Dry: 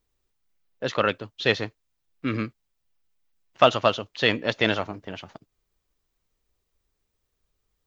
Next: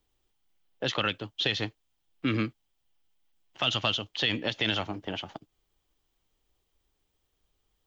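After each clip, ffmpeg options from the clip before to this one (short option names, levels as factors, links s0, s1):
-filter_complex "[0:a]acrossover=split=210|1700[s0][s1][s2];[s1]acompressor=threshold=0.0282:ratio=6[s3];[s0][s3][s2]amix=inputs=3:normalize=0,alimiter=limit=0.141:level=0:latency=1:release=56,equalizer=f=315:t=o:w=0.33:g=5,equalizer=f=800:t=o:w=0.33:g=6,equalizer=f=3150:t=o:w=0.33:g=8"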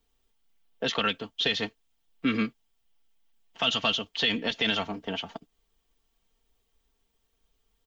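-af "aecho=1:1:4.4:0.69"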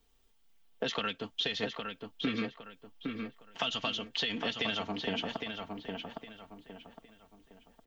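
-filter_complex "[0:a]acompressor=threshold=0.02:ratio=6,asplit=2[s0][s1];[s1]adelay=811,lowpass=f=3000:p=1,volume=0.596,asplit=2[s2][s3];[s3]adelay=811,lowpass=f=3000:p=1,volume=0.35,asplit=2[s4][s5];[s5]adelay=811,lowpass=f=3000:p=1,volume=0.35,asplit=2[s6][s7];[s7]adelay=811,lowpass=f=3000:p=1,volume=0.35[s8];[s2][s4][s6][s8]amix=inputs=4:normalize=0[s9];[s0][s9]amix=inputs=2:normalize=0,volume=1.41"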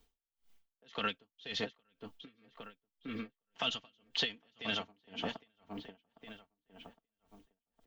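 -af "aeval=exprs='val(0)*pow(10,-38*(0.5-0.5*cos(2*PI*1.9*n/s))/20)':c=same,volume=1.12"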